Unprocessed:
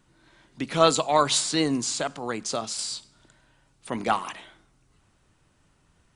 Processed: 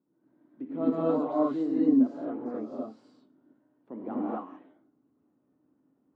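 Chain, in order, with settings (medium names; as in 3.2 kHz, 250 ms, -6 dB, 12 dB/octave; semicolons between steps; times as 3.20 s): ladder band-pass 330 Hz, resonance 45%; gated-style reverb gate 290 ms rising, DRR -7 dB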